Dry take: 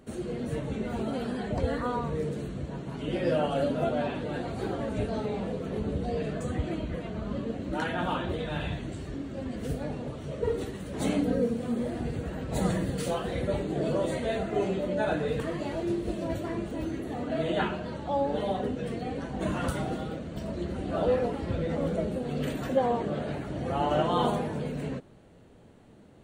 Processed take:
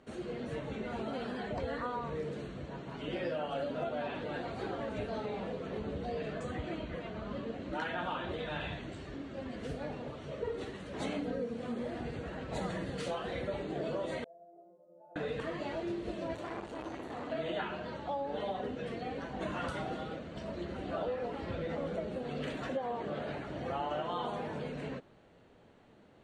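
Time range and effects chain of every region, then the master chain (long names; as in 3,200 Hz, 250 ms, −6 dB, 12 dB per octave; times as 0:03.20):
0:14.24–0:15.16: transistor ladder low-pass 680 Hz, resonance 65% + spectral tilt +2 dB per octave + stiff-string resonator 170 Hz, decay 0.61 s, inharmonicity 0.002
0:16.35–0:17.32: high-shelf EQ 5,200 Hz +7.5 dB + saturating transformer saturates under 770 Hz
whole clip: Bessel low-pass filter 4,100 Hz, order 2; low-shelf EQ 410 Hz −10 dB; downward compressor 10 to 1, threshold −32 dBFS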